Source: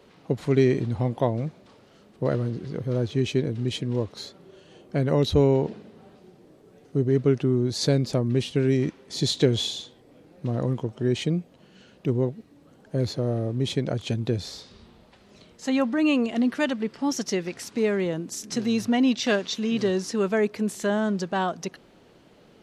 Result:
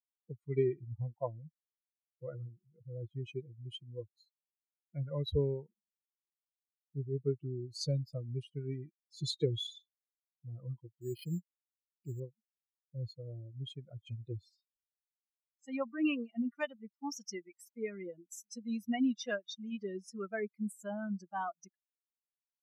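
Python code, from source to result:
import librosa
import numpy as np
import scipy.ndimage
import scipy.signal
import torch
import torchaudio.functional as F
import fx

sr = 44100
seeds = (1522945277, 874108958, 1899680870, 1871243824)

y = fx.bin_expand(x, sr, power=3.0)
y = fx.resample_bad(y, sr, factor=6, down='filtered', up='hold', at=(11.01, 12.2))
y = y * 10.0 ** (-6.5 / 20.0)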